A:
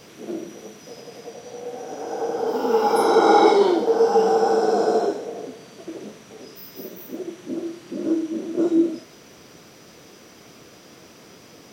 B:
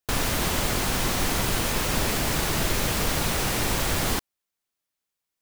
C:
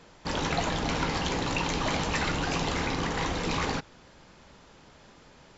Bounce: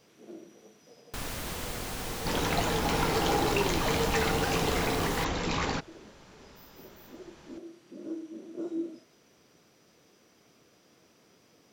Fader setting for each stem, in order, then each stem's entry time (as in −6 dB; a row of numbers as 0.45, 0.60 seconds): −15.5, −11.5, −1.0 decibels; 0.00, 1.05, 2.00 seconds